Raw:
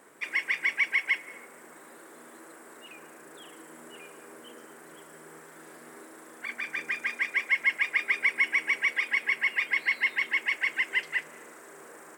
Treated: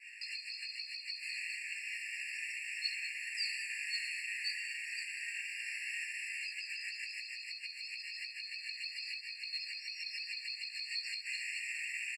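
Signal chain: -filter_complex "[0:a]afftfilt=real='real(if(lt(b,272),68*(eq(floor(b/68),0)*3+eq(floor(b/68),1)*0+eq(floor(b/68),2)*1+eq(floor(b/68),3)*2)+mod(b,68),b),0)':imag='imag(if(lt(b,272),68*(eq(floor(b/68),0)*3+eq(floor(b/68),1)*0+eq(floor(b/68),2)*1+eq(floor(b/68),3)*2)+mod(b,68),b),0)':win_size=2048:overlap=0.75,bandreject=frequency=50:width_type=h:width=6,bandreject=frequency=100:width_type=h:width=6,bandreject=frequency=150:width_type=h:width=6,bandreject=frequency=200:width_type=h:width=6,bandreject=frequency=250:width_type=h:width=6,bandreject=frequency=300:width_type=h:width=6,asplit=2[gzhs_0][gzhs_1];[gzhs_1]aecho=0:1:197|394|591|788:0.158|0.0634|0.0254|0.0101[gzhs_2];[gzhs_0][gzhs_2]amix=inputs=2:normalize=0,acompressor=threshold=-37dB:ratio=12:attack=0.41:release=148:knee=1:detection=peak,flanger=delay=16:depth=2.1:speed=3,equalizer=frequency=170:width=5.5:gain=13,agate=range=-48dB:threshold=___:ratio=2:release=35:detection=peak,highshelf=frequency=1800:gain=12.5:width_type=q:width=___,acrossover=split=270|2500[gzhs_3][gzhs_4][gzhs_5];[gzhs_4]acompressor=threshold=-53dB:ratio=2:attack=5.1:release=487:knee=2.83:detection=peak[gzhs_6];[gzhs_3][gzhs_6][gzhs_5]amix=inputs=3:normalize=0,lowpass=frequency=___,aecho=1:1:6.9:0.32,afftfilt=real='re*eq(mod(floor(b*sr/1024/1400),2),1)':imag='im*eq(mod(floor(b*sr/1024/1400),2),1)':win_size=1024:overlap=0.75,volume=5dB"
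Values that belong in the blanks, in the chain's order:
-53dB, 1.5, 5900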